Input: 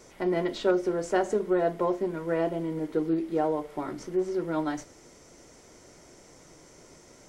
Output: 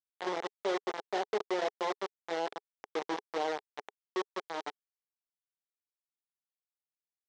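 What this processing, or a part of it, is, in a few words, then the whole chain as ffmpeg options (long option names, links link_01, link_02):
hand-held game console: -af "acrusher=bits=3:mix=0:aa=0.000001,highpass=420,equalizer=frequency=420:width_type=q:width=4:gain=6,equalizer=frequency=810:width_type=q:width=4:gain=6,equalizer=frequency=1400:width_type=q:width=4:gain=-3,equalizer=frequency=2600:width_type=q:width=4:gain=-6,equalizer=frequency=4600:width_type=q:width=4:gain=-4,lowpass=frequency=5400:width=0.5412,lowpass=frequency=5400:width=1.3066,volume=-8.5dB"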